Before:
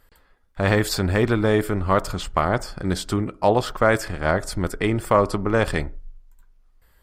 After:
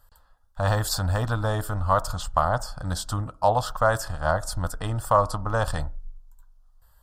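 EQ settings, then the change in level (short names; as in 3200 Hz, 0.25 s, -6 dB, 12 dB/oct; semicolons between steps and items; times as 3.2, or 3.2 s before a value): bell 210 Hz -9 dB 0.69 oct; fixed phaser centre 920 Hz, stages 4; +1.0 dB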